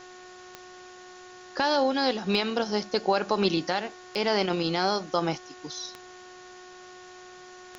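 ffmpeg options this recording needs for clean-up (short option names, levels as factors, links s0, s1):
-af "adeclick=t=4,bandreject=f=364.9:t=h:w=4,bandreject=f=729.8:t=h:w=4,bandreject=f=1094.7:t=h:w=4,bandreject=f=1459.6:t=h:w=4,bandreject=f=1824.5:t=h:w=4,afwtdn=0.0035"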